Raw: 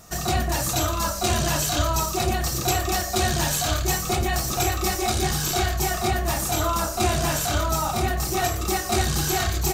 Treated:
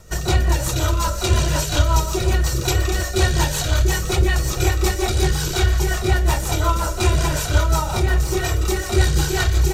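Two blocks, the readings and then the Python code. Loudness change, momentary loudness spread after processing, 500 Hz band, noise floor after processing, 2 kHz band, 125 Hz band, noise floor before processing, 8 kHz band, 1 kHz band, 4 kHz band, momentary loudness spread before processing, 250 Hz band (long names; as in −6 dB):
+3.5 dB, 2 LU, +3.0 dB, −26 dBFS, +3.5 dB, +7.5 dB, −29 dBFS, −0.5 dB, −1.0 dB, +1.5 dB, 2 LU, +2.5 dB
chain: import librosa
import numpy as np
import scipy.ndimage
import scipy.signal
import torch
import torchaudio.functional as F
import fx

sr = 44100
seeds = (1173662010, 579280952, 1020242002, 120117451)

y = fx.low_shelf(x, sr, hz=62.0, db=6.5)
y = y + 0.56 * np.pad(y, (int(2.1 * sr / 1000.0), 0))[:len(y)]
y = fx.echo_thinned(y, sr, ms=124, feedback_pct=77, hz=420.0, wet_db=-16.0)
y = fx.rotary(y, sr, hz=5.5)
y = fx.high_shelf(y, sr, hz=6400.0, db=-7.0)
y = y * 10.0 ** (4.5 / 20.0)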